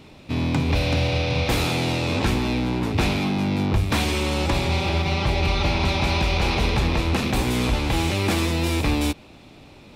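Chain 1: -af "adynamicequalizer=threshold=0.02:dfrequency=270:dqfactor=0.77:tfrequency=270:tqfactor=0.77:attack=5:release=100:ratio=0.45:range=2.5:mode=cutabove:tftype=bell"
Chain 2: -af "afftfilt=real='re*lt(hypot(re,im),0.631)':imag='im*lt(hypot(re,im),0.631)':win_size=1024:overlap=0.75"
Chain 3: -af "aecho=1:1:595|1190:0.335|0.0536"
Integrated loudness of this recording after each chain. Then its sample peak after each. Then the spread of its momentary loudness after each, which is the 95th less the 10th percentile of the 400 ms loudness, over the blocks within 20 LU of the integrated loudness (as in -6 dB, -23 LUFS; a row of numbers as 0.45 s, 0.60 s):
-24.0 LUFS, -24.0 LUFS, -22.0 LUFS; -11.0 dBFS, -11.0 dBFS, -9.5 dBFS; 3 LU, 3 LU, 2 LU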